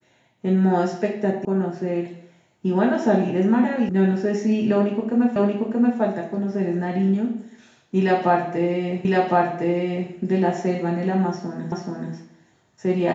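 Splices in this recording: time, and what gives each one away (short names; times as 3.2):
1.45 sound cut off
3.89 sound cut off
5.36 repeat of the last 0.63 s
9.05 repeat of the last 1.06 s
11.72 repeat of the last 0.43 s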